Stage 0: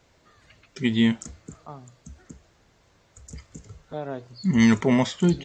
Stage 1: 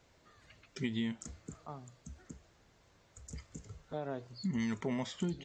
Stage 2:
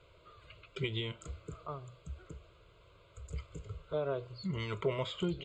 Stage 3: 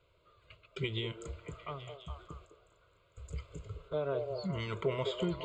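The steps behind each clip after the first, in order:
downward compressor 6 to 1, threshold −27 dBFS, peak gain reduction 13.5 dB; level −5.5 dB
high-frequency loss of the air 62 metres; phaser with its sweep stopped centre 1,200 Hz, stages 8; level +8 dB
noise gate −54 dBFS, range −8 dB; echo through a band-pass that steps 207 ms, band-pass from 540 Hz, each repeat 0.7 octaves, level −3 dB

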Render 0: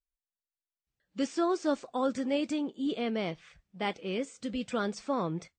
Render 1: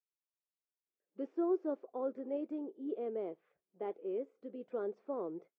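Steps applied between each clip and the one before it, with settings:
four-pole ladder band-pass 450 Hz, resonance 55%
level +3 dB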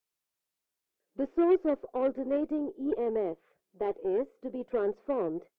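harmonic generator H 8 −29 dB, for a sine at −24 dBFS
level +8.5 dB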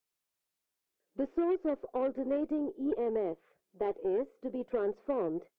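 downward compressor 6 to 1, threshold −27 dBFS, peak gain reduction 8 dB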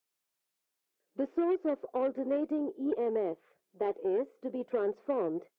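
high-pass filter 160 Hz 6 dB per octave
level +1.5 dB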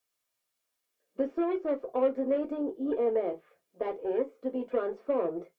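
convolution reverb RT60 0.15 s, pre-delay 3 ms, DRR 2.5 dB

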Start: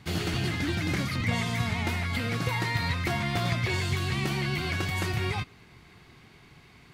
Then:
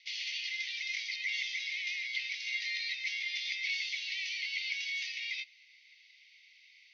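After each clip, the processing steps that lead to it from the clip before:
Chebyshev band-pass filter 2,000–6,100 Hz, order 5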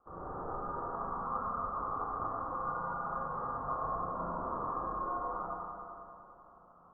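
four-comb reverb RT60 2.9 s, combs from 32 ms, DRR −9 dB
voice inversion scrambler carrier 3,300 Hz
level −8 dB

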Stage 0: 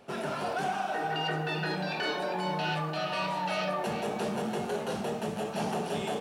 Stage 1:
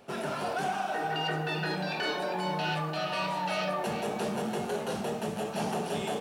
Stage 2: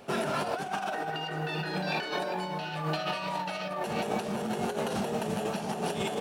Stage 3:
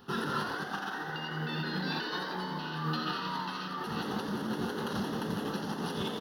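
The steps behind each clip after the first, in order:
high-shelf EQ 8,700 Hz +4.5 dB
compressor whose output falls as the input rises −34 dBFS, ratio −0.5; level +2.5 dB
phaser with its sweep stopped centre 2,300 Hz, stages 6; echo with shifted repeats 87 ms, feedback 61%, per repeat +78 Hz, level −6.5 dB

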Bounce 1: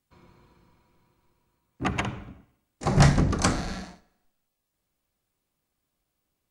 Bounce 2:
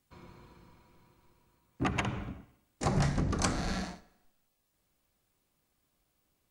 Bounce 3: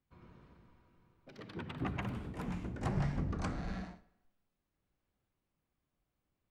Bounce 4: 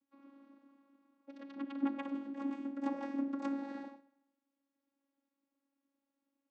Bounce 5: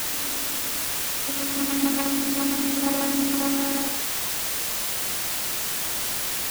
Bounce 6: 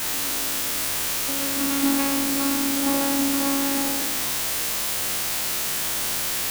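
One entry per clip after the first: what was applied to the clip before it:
downward compressor 4 to 1, threshold −31 dBFS, peak gain reduction 15.5 dB; level +3 dB
bass and treble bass +4 dB, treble −14 dB; delay with pitch and tempo change per echo 122 ms, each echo +4 semitones, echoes 3, each echo −6 dB; level −8.5 dB
channel vocoder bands 16, saw 277 Hz; level +1.5 dB
in parallel at 0 dB: compressor whose output falls as the input rises −42 dBFS; on the sum: bit-depth reduction 6 bits, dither triangular; level +8.5 dB
peak hold with a decay on every bin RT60 1.69 s; level −1.5 dB

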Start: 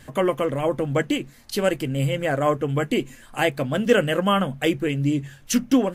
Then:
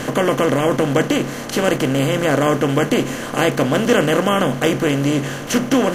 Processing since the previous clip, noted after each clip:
compressor on every frequency bin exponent 0.4
level −1 dB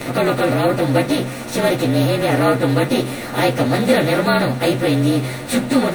partials spread apart or drawn together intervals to 111%
level +3 dB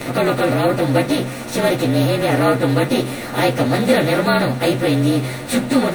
no processing that can be heard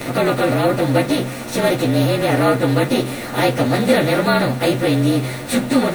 bit reduction 7 bits

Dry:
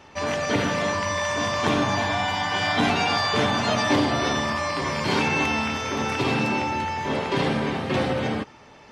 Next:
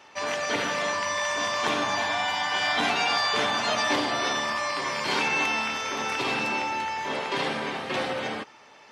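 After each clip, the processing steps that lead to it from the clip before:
high-pass filter 740 Hz 6 dB per octave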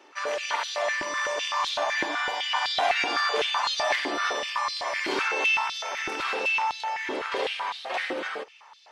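high-pass on a step sequencer 7.9 Hz 330–3,900 Hz
level −4.5 dB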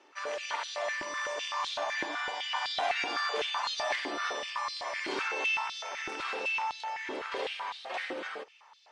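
Butterworth low-pass 10,000 Hz 48 dB per octave
level −6.5 dB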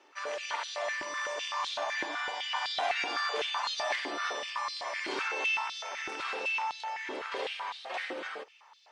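low-shelf EQ 200 Hz −6.5 dB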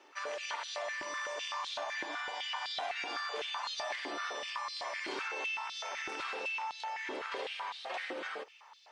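downward compressor 3 to 1, threshold −38 dBFS, peak gain reduction 9.5 dB
level +1 dB

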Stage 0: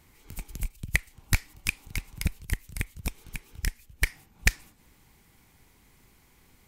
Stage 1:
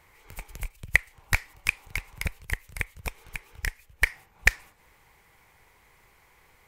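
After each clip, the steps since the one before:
octave-band graphic EQ 250/500/1,000/2,000 Hz −9/+8/+7/+8 dB
level −3 dB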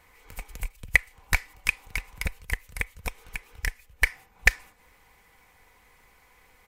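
comb filter 4 ms, depth 41%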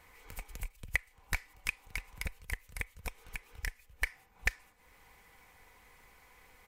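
downward compressor 1.5 to 1, threshold −44 dBFS, peak gain reduction 11.5 dB
level −1.5 dB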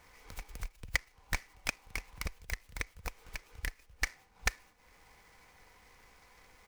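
short delay modulated by noise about 3,000 Hz, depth 0.042 ms

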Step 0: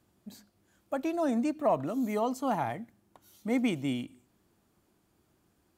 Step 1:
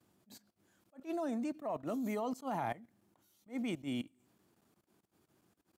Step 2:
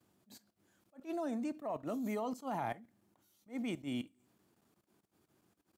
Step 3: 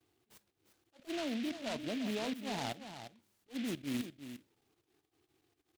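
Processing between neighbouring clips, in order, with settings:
high-pass filter 110 Hz 12 dB per octave; output level in coarse steps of 18 dB; level that may rise only so fast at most 300 dB per second
convolution reverb, pre-delay 3 ms, DRR 17.5 dB; level −1 dB
flanger swept by the level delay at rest 2.7 ms, full sweep at −38.5 dBFS; single-tap delay 350 ms −10 dB; short delay modulated by noise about 2,600 Hz, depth 0.14 ms; level +1 dB

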